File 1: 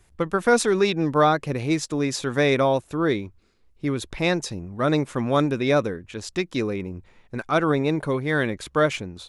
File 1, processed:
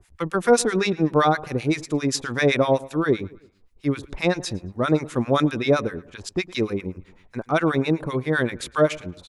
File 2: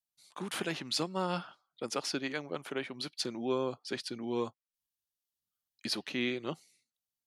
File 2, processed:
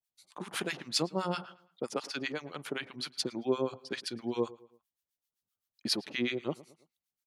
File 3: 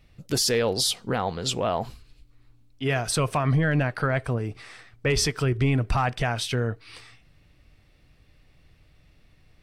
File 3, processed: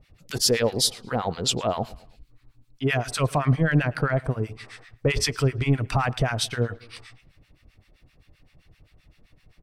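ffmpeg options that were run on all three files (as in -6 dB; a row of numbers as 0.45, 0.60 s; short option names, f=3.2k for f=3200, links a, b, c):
-filter_complex "[0:a]acrossover=split=1000[a][b];[a]aeval=exprs='val(0)*(1-1/2+1/2*cos(2*PI*7.7*n/s))':c=same[c];[b]aeval=exprs='val(0)*(1-1/2-1/2*cos(2*PI*7.7*n/s))':c=same[d];[c][d]amix=inputs=2:normalize=0,asplit=2[e][f];[f]adelay=111,lowpass=f=3.3k:p=1,volume=-20dB,asplit=2[g][h];[h]adelay=111,lowpass=f=3.3k:p=1,volume=0.44,asplit=2[i][j];[j]adelay=111,lowpass=f=3.3k:p=1,volume=0.44[k];[e][g][i][k]amix=inputs=4:normalize=0,volume=5dB"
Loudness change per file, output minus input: +0.5, +1.0, +0.5 LU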